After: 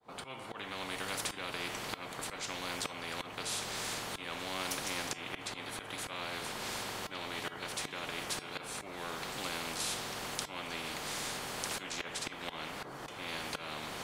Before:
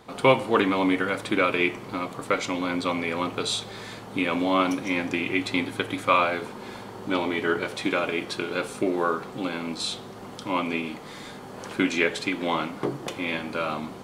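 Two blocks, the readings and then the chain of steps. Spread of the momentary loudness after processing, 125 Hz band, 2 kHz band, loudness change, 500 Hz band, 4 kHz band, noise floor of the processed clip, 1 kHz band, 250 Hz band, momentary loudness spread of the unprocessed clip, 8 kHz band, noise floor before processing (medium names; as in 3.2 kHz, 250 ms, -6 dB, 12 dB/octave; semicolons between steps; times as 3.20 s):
5 LU, -12.5 dB, -11.5 dB, -12.5 dB, -17.5 dB, -5.5 dB, -48 dBFS, -13.0 dB, -20.0 dB, 14 LU, +1.0 dB, -41 dBFS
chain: fade-in on the opening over 1.43 s; peaking EQ 750 Hz +8 dB 1.7 oct; slow attack 591 ms; feedback comb 150 Hz, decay 0.27 s, harmonics odd, mix 50%; spectrum-flattening compressor 4:1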